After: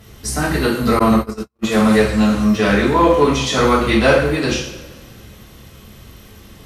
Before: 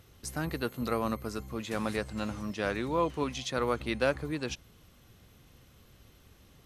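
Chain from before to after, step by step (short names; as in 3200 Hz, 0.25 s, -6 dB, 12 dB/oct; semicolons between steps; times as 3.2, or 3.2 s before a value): two-slope reverb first 0.63 s, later 2.1 s, DRR -8.5 dB; 0.99–1.64 gate -22 dBFS, range -57 dB; in parallel at -4 dB: one-sided clip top -19 dBFS; 2.49–3.9 on the sum: crackle 310/s -43 dBFS; gain +4 dB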